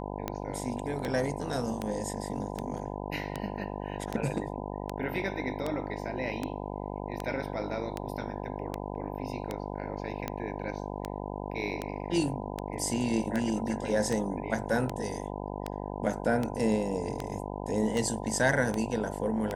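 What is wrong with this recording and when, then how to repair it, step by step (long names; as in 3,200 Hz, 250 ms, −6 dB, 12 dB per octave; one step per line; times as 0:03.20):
mains buzz 50 Hz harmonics 20 −37 dBFS
scratch tick 78 rpm −17 dBFS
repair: click removal
hum removal 50 Hz, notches 20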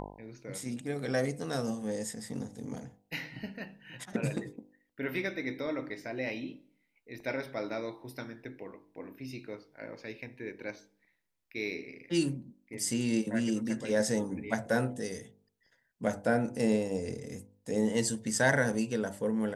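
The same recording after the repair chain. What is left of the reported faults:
none of them is left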